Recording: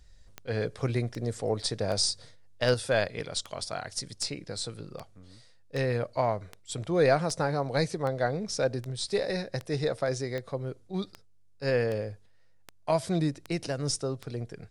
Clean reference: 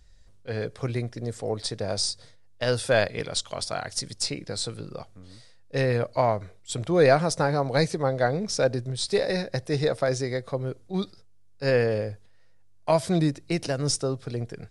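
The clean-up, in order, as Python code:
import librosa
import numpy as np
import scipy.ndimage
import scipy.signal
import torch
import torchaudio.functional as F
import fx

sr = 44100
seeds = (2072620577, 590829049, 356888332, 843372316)

y = fx.fix_declick_ar(x, sr, threshold=10.0)
y = fx.gain(y, sr, db=fx.steps((0.0, 0.0), (2.74, 4.5)))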